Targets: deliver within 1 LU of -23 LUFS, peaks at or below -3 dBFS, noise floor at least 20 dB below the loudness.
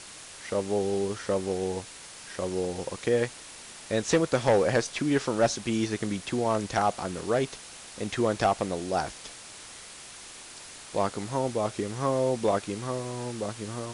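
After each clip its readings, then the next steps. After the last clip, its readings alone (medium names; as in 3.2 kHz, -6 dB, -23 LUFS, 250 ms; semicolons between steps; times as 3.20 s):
noise floor -46 dBFS; noise floor target -49 dBFS; loudness -28.5 LUFS; peak level -14.5 dBFS; loudness target -23.0 LUFS
-> noise print and reduce 6 dB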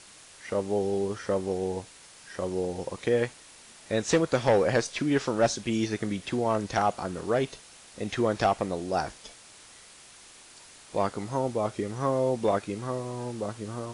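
noise floor -52 dBFS; loudness -28.5 LUFS; peak level -14.5 dBFS; loudness target -23.0 LUFS
-> trim +5.5 dB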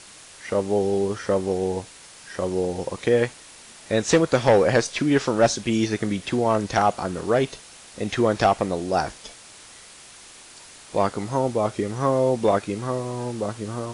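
loudness -23.0 LUFS; peak level -9.0 dBFS; noise floor -46 dBFS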